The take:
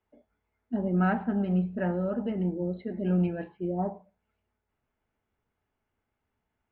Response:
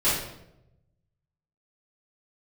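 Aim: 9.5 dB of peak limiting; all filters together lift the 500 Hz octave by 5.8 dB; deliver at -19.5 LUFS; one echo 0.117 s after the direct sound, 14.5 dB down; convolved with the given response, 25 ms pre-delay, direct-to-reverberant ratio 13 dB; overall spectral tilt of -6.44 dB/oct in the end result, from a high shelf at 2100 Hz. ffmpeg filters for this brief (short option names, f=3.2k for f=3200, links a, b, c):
-filter_complex "[0:a]equalizer=f=500:t=o:g=7,highshelf=f=2.1k:g=8.5,alimiter=limit=-21.5dB:level=0:latency=1,aecho=1:1:117:0.188,asplit=2[a][b];[1:a]atrim=start_sample=2205,adelay=25[c];[b][c]afir=irnorm=-1:irlink=0,volume=-27dB[d];[a][d]amix=inputs=2:normalize=0,volume=10.5dB"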